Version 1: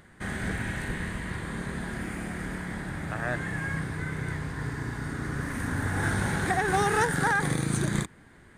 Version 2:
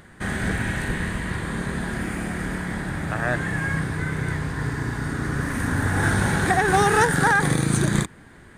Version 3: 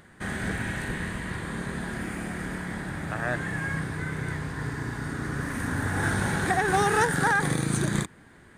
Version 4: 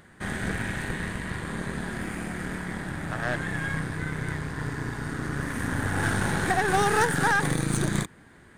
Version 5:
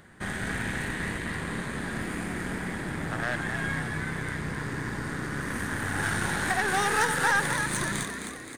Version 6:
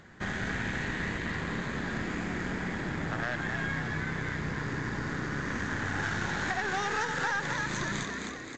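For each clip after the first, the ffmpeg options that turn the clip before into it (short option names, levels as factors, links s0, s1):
-af "bandreject=f=2100:w=28,volume=2.11"
-af "lowshelf=f=67:g=-6,volume=0.596"
-af "aeval=exprs='0.266*(cos(1*acos(clip(val(0)/0.266,-1,1)))-cos(1*PI/2))+0.0168*(cos(8*acos(clip(val(0)/0.266,-1,1)))-cos(8*PI/2))':c=same"
-filter_complex "[0:a]acrossover=split=940[s0][s1];[s0]alimiter=level_in=1.19:limit=0.0631:level=0:latency=1:release=99,volume=0.841[s2];[s2][s1]amix=inputs=2:normalize=0,asplit=8[s3][s4][s5][s6][s7][s8][s9][s10];[s4]adelay=261,afreqshift=62,volume=0.447[s11];[s5]adelay=522,afreqshift=124,volume=0.24[s12];[s6]adelay=783,afreqshift=186,volume=0.13[s13];[s7]adelay=1044,afreqshift=248,volume=0.07[s14];[s8]adelay=1305,afreqshift=310,volume=0.038[s15];[s9]adelay=1566,afreqshift=372,volume=0.0204[s16];[s10]adelay=1827,afreqshift=434,volume=0.0111[s17];[s3][s11][s12][s13][s14][s15][s16][s17]amix=inputs=8:normalize=0"
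-af "acompressor=threshold=0.0398:ratio=4" -ar 16000 -c:a pcm_alaw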